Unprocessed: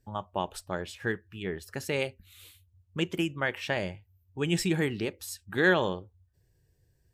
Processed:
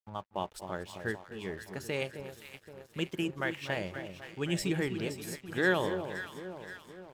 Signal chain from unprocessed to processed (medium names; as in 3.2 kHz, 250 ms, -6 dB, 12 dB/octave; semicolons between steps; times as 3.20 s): echo whose repeats swap between lows and highs 261 ms, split 1 kHz, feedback 74%, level -7.5 dB; crossover distortion -51 dBFS; delay 240 ms -17.5 dB; trim -4 dB